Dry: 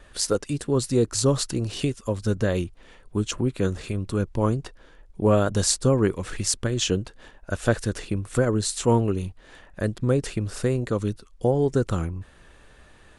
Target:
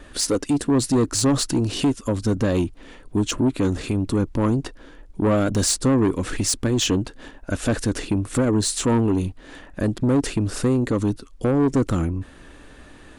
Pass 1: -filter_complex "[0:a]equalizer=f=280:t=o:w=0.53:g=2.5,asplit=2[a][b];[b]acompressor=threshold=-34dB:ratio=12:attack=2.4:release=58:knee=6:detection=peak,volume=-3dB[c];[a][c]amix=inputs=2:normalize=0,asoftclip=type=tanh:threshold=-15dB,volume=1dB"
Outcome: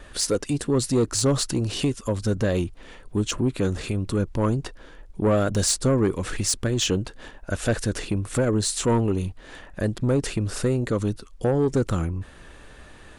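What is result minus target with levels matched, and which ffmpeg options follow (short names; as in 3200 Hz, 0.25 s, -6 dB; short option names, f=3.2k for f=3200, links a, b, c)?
compressor: peak gain reduction +9.5 dB; 250 Hz band -2.5 dB
-filter_complex "[0:a]equalizer=f=280:t=o:w=0.53:g=10.5,asplit=2[a][b];[b]acompressor=threshold=-22dB:ratio=12:attack=2.4:release=58:knee=6:detection=peak,volume=-3dB[c];[a][c]amix=inputs=2:normalize=0,asoftclip=type=tanh:threshold=-15dB,volume=1dB"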